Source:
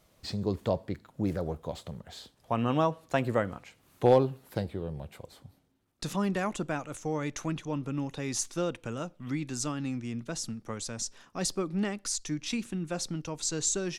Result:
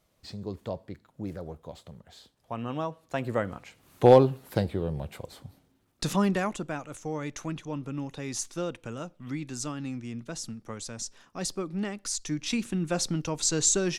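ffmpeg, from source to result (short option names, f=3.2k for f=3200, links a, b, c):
-af "volume=12.5dB,afade=t=in:st=3.03:d=1.1:silence=0.266073,afade=t=out:st=6.17:d=0.44:silence=0.446684,afade=t=in:st=11.92:d=1.01:silence=0.446684"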